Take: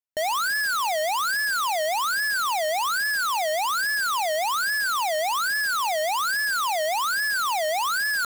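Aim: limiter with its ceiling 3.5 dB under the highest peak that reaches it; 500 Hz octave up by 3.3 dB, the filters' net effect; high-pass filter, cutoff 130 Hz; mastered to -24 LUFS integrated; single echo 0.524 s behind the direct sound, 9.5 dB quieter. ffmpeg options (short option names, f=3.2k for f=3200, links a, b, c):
-af "highpass=130,equalizer=f=500:t=o:g=5,alimiter=limit=-22.5dB:level=0:latency=1,aecho=1:1:524:0.335,volume=-1.5dB"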